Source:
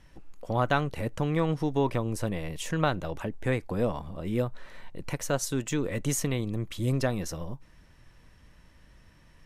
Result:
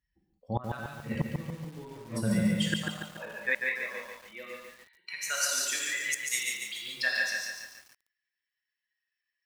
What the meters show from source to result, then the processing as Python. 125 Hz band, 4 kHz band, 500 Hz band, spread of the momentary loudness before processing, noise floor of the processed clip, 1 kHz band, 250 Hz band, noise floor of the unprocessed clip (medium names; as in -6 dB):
-7.5 dB, +6.0 dB, -10.5 dB, 9 LU, under -85 dBFS, -8.5 dB, -3.5 dB, -57 dBFS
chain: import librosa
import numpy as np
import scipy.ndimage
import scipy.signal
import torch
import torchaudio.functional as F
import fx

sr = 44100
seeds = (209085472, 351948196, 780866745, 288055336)

y = fx.bin_expand(x, sr, power=2.0)
y = fx.graphic_eq_15(y, sr, hz=(160, 1600, 4000), db=(7, 9, 5))
y = fx.filter_sweep_highpass(y, sr, from_hz=150.0, to_hz=1600.0, start_s=2.34, end_s=3.77, q=1.0)
y = fx.rev_gated(y, sr, seeds[0], gate_ms=220, shape='flat', drr_db=-3.0)
y = fx.gate_flip(y, sr, shuts_db=-19.0, range_db=-26)
y = fx.echo_crushed(y, sr, ms=143, feedback_pct=55, bits=9, wet_db=-4)
y = y * librosa.db_to_amplitude(3.5)